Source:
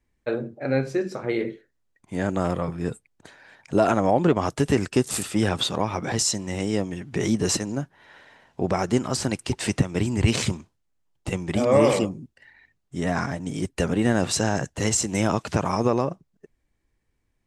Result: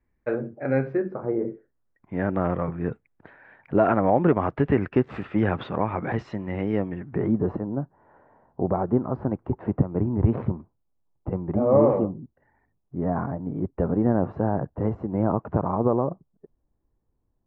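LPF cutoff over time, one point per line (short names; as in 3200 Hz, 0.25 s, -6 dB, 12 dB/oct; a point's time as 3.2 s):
LPF 24 dB/oct
0.87 s 2100 Hz
1.35 s 1000 Hz
2.14 s 2100 Hz
6.87 s 2100 Hz
7.47 s 1100 Hz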